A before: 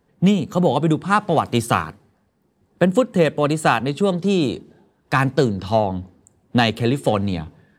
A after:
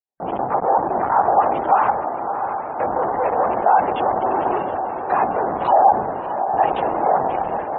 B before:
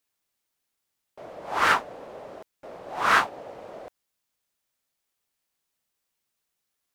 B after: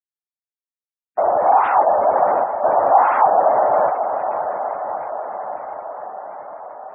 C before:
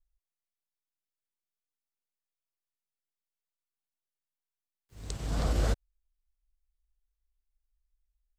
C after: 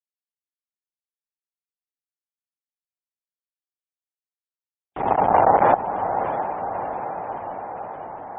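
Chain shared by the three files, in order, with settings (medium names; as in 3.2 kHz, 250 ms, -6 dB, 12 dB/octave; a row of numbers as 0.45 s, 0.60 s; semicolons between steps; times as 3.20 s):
expander -45 dBFS; LPC vocoder at 8 kHz whisper; compressor with a negative ratio -26 dBFS, ratio -1; waveshaping leveller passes 3; peak limiter -17.5 dBFS; waveshaping leveller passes 5; band-pass filter 790 Hz, Q 4.3; echo that smears into a reverb 658 ms, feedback 67%, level -8 dB; spectral gate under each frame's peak -30 dB strong; peak normalisation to -3 dBFS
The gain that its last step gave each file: +11.5 dB, +12.0 dB, +16.5 dB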